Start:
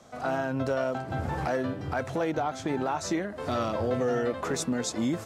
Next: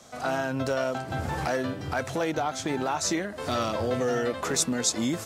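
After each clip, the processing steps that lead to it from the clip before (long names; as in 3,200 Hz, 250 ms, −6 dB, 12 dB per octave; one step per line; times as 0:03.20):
high-shelf EQ 2,500 Hz +10 dB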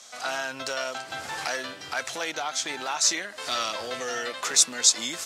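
resonant band-pass 4,900 Hz, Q 0.58
level +8 dB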